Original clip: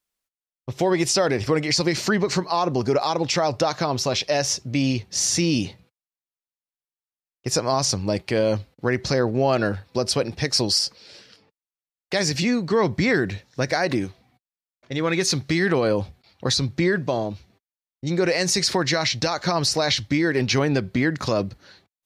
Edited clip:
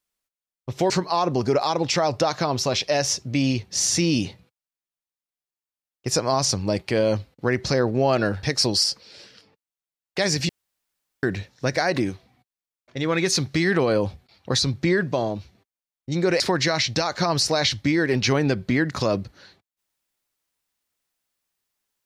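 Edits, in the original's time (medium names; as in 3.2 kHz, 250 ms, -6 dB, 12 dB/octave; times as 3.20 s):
0.90–2.30 s: delete
9.83–10.38 s: delete
12.44–13.18 s: room tone
18.35–18.66 s: delete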